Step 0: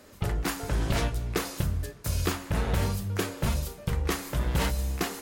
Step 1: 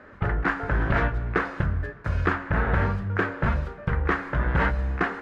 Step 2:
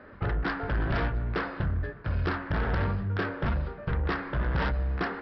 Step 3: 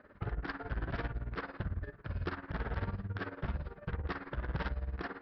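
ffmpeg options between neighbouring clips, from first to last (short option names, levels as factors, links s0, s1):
-af "lowpass=f=1600:t=q:w=3.1,volume=1.41"
-af "aresample=11025,asoftclip=type=tanh:threshold=0.0794,aresample=44100,equalizer=f=1800:w=0.65:g=-3"
-af "tremolo=f=18:d=0.81,volume=0.501"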